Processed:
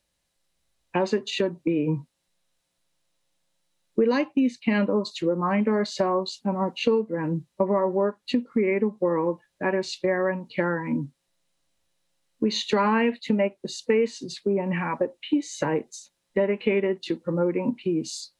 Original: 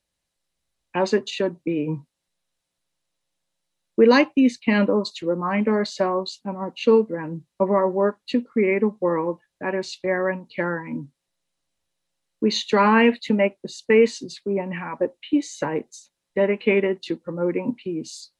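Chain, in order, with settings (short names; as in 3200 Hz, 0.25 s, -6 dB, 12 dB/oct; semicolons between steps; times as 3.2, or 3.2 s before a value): harmonic-percussive split percussive -5 dB; compressor 4:1, threshold -27 dBFS, peak gain reduction 14 dB; gain +6 dB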